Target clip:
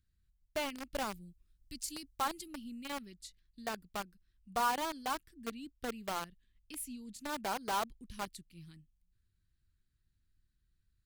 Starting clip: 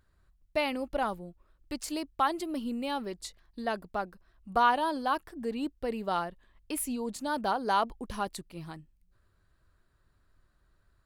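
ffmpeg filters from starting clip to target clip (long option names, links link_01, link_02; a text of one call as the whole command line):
ffmpeg -i in.wav -filter_complex "[0:a]asettb=1/sr,asplit=3[link_01][link_02][link_03];[link_01]atrim=end=0.944[link_04];[link_02]atrim=start=0.94:end=2.48,asetpts=PTS-STARTPTS,afade=type=in:duration=0.004:curve=qsin,afade=type=out:start_time=1.536:duration=0.004:curve=qsin,bass=frequency=250:gain=4,treble=frequency=4000:gain=8[link_05];[link_03]atrim=start=2.476[link_06];[link_04][link_05]acrossfade=duration=0.004:curve1=hsin:curve2=qsin[link_07];[link_07][link_06]acrossfade=duration=0.004:curve1=qsin:curve2=hsin,acrossover=split=290|1900[link_08][link_09][link_10];[link_09]acrusher=bits=4:mix=0:aa=0.000001[link_11];[link_08][link_11][link_10]amix=inputs=3:normalize=0,volume=-8dB" out.wav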